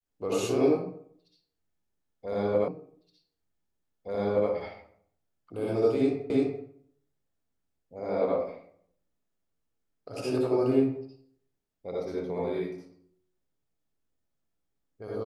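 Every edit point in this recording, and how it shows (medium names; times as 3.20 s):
2.68 s: repeat of the last 1.82 s
6.30 s: repeat of the last 0.34 s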